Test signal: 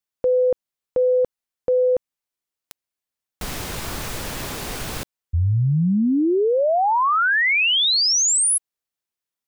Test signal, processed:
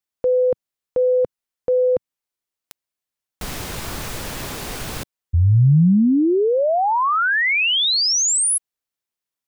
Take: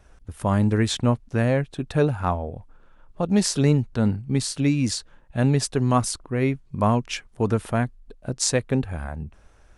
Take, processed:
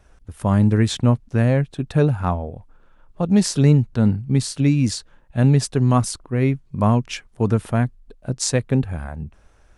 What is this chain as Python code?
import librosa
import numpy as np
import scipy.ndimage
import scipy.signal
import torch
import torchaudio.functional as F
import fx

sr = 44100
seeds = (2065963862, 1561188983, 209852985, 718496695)

y = fx.dynamic_eq(x, sr, hz=140.0, q=0.75, threshold_db=-33.0, ratio=5.0, max_db=6)